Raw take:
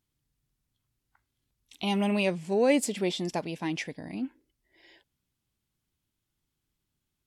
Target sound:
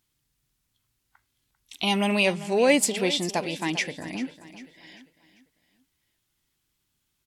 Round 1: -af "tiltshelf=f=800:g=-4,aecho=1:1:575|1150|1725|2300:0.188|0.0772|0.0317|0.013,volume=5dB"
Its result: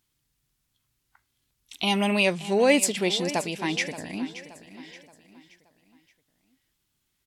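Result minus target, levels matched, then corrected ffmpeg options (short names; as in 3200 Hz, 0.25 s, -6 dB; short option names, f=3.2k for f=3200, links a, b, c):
echo 0.18 s late
-af "tiltshelf=f=800:g=-4,aecho=1:1:395|790|1185|1580:0.188|0.0772|0.0317|0.013,volume=5dB"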